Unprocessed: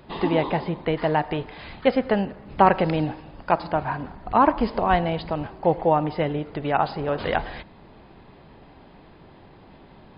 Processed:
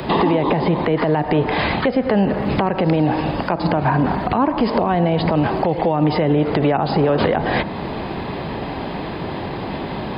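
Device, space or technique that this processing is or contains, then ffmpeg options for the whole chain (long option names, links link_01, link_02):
mastering chain: -filter_complex "[0:a]equalizer=frequency=1400:width_type=o:width=0.22:gain=-3,acrossover=split=98|440|1700[link_01][link_02][link_03][link_04];[link_01]acompressor=threshold=-49dB:ratio=4[link_05];[link_02]acompressor=threshold=-30dB:ratio=4[link_06];[link_03]acompressor=threshold=-34dB:ratio=4[link_07];[link_04]acompressor=threshold=-50dB:ratio=4[link_08];[link_05][link_06][link_07][link_08]amix=inputs=4:normalize=0,acompressor=threshold=-33dB:ratio=2.5,alimiter=level_in=30dB:limit=-1dB:release=50:level=0:latency=1,highpass=frequency=90:poles=1,volume=-6.5dB"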